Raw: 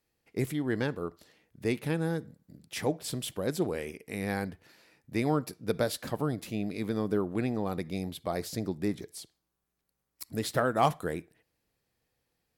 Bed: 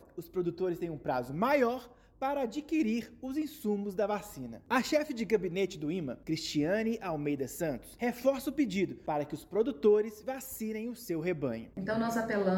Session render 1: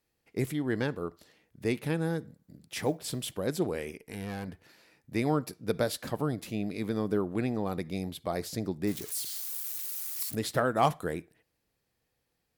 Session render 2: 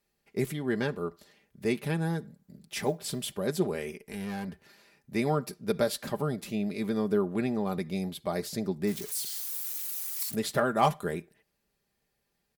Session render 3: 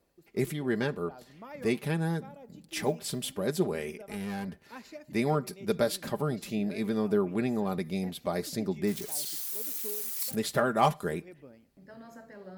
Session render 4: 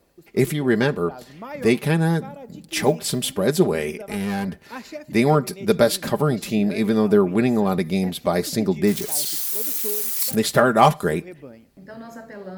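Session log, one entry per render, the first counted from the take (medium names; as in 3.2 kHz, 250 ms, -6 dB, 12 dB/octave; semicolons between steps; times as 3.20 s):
2.60–3.29 s: block-companded coder 7-bit; 3.98–4.48 s: valve stage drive 32 dB, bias 0.55; 8.87–10.35 s: zero-crossing glitches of -30.5 dBFS
comb 5 ms, depth 56%
add bed -17.5 dB
trim +10.5 dB; peak limiter -2 dBFS, peak gain reduction 1.5 dB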